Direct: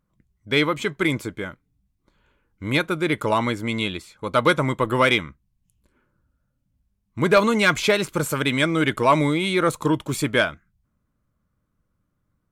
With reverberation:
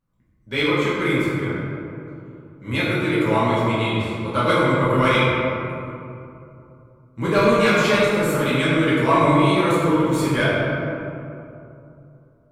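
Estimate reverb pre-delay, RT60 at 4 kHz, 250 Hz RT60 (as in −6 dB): 5 ms, 1.3 s, 3.2 s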